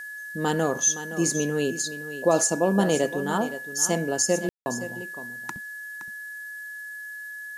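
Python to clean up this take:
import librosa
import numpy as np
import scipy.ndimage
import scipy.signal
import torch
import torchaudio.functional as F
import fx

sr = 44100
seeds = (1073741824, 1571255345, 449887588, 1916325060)

y = fx.notch(x, sr, hz=1700.0, q=30.0)
y = fx.fix_ambience(y, sr, seeds[0], print_start_s=6.36, print_end_s=6.86, start_s=4.49, end_s=4.66)
y = fx.noise_reduce(y, sr, print_start_s=6.36, print_end_s=6.86, reduce_db=30.0)
y = fx.fix_echo_inverse(y, sr, delay_ms=518, level_db=-12.5)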